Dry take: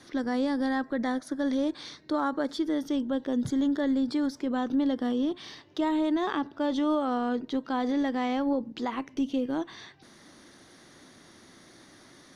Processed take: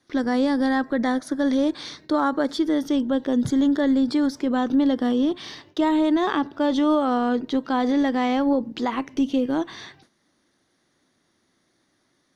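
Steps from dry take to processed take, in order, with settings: gate with hold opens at -41 dBFS; trim +6.5 dB

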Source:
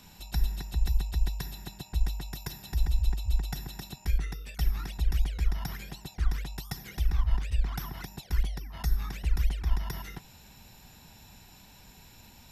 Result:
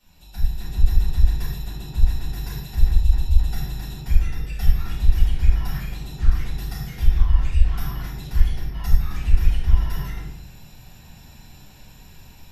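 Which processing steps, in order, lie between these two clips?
level rider gain up to 9 dB; simulated room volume 160 m³, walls mixed, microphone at 4.6 m; trim -18 dB

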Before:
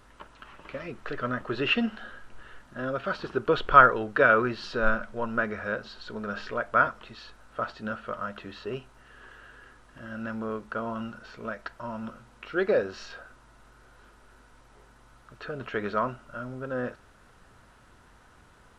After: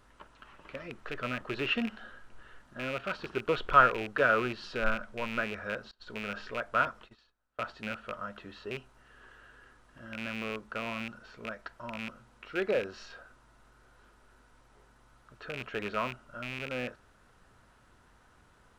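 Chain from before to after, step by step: rattle on loud lows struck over -37 dBFS, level -21 dBFS; 5.91–7.64 s: gate -43 dBFS, range -24 dB; trim -5.5 dB

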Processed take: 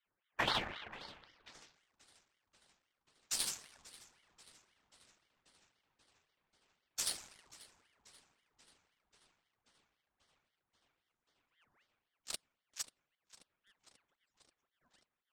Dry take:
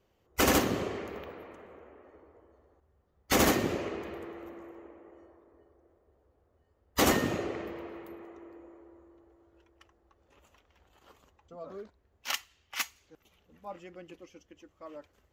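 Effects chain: local Wiener filter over 25 samples; on a send: tape echo 536 ms, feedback 87%, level -16 dB, low-pass 5.2 kHz; on the sum: band-pass sweep 1.4 kHz -> 7.2 kHz, 0.84–1.97 s; ring modulator with a swept carrier 1.5 kHz, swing 75%, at 3.8 Hz; trim +3 dB

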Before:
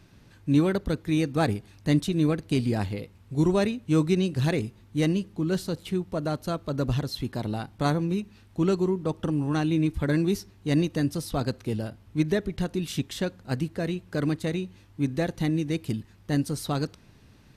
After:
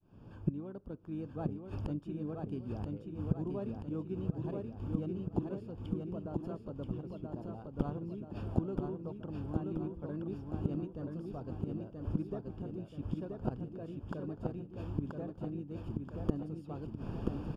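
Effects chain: fade-in on the opening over 1.15 s; in parallel at -2 dB: compression 6:1, threshold -36 dBFS, peak gain reduction 18 dB; on the sum: inverted gate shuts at -28 dBFS, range -28 dB; harmony voices -7 st -11 dB; boxcar filter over 22 samples; bass shelf 170 Hz -4 dB; on a send: feedback delay 980 ms, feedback 51%, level -3.5 dB; on the sum: trim +12 dB

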